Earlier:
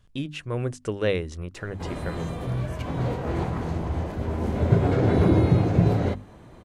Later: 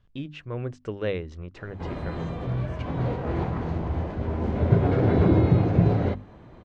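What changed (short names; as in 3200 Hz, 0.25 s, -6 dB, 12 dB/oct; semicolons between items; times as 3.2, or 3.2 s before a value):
speech -3.5 dB; master: add air absorption 160 m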